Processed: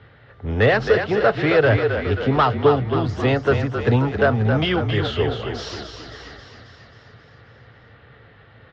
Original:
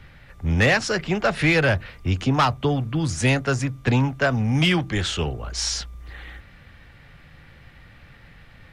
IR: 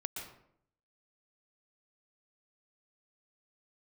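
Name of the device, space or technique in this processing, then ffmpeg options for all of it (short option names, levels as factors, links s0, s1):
frequency-shifting delay pedal into a guitar cabinet: -filter_complex "[0:a]asplit=9[s0][s1][s2][s3][s4][s5][s6][s7][s8];[s1]adelay=268,afreqshift=-37,volume=0.473[s9];[s2]adelay=536,afreqshift=-74,volume=0.279[s10];[s3]adelay=804,afreqshift=-111,volume=0.164[s11];[s4]adelay=1072,afreqshift=-148,volume=0.0977[s12];[s5]adelay=1340,afreqshift=-185,volume=0.0575[s13];[s6]adelay=1608,afreqshift=-222,volume=0.0339[s14];[s7]adelay=1876,afreqshift=-259,volume=0.02[s15];[s8]adelay=2144,afreqshift=-296,volume=0.0117[s16];[s0][s9][s10][s11][s12][s13][s14][s15][s16]amix=inputs=9:normalize=0,highpass=96,equalizer=f=110:t=q:w=4:g=7,equalizer=f=170:t=q:w=4:g=-7,equalizer=f=440:t=q:w=4:g=10,equalizer=f=670:t=q:w=4:g=4,equalizer=f=1300:t=q:w=4:g=3,equalizer=f=2400:t=q:w=4:g=-8,lowpass=f=3900:w=0.5412,lowpass=f=3900:w=1.3066"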